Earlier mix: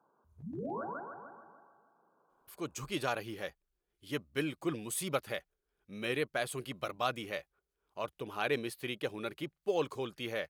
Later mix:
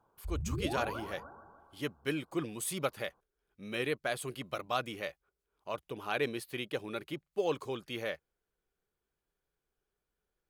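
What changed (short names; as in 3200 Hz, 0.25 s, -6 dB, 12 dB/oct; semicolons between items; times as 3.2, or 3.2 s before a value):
speech: entry -2.30 s; background: remove HPF 160 Hz 24 dB/oct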